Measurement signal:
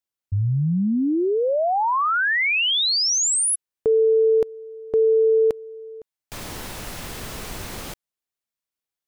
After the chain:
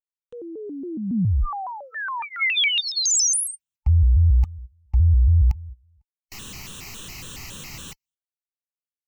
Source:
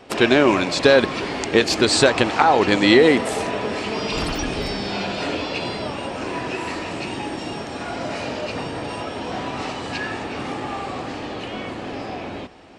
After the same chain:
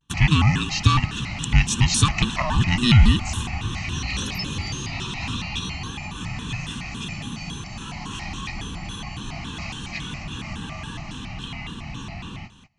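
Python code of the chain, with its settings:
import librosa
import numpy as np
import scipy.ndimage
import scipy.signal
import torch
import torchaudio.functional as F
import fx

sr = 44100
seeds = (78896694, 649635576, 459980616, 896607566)

y = fx.band_invert(x, sr, width_hz=500)
y = fx.gate_hold(y, sr, open_db=-27.0, close_db=-29.0, hold_ms=202.0, range_db=-22, attack_ms=0.21, release_ms=26.0)
y = fx.band_shelf(y, sr, hz=630.0, db=-9.5, octaves=3.0)
y = fx.fixed_phaser(y, sr, hz=2800.0, stages=8)
y = fx.vibrato_shape(y, sr, shape='square', rate_hz=3.6, depth_cents=250.0)
y = F.gain(torch.from_numpy(y), 2.0).numpy()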